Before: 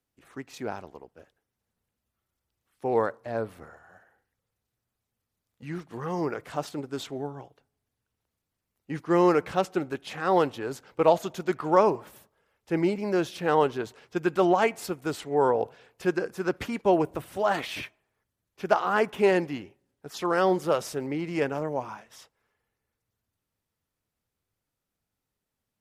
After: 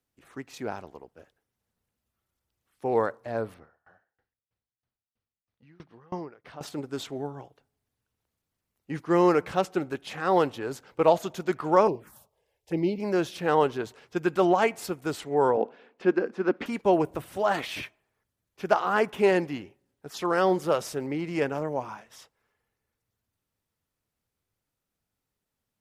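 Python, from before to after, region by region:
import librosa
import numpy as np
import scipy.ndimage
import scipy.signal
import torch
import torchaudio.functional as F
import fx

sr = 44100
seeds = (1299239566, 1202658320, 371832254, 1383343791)

y = fx.chain(x, sr, fx.savgol(points=15),
    fx.tremolo_decay(direction='decaying', hz=3.1, depth_db=29), at=(3.54, 6.61))
y = fx.chain(y, sr, fx.dynamic_eq(hz=1200.0, q=0.76, threshold_db=-40.0, ratio=4.0, max_db=-5),
    fx.env_phaser(low_hz=210.0, high_hz=1500.0, full_db=-25.5), at=(11.87, 13.0))
y = fx.chain(y, sr, fx.lowpass(hz=3200.0, slope=12),
    fx.low_shelf_res(hz=160.0, db=-13.0, q=3.0), at=(15.57, 16.66))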